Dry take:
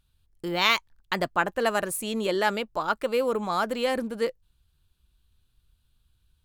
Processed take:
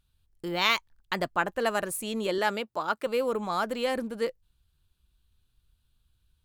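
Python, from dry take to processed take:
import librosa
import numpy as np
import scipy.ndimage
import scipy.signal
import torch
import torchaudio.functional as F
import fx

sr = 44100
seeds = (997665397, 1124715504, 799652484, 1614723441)

y = fx.highpass(x, sr, hz=150.0, slope=12, at=(2.38, 3.07))
y = F.gain(torch.from_numpy(y), -2.5).numpy()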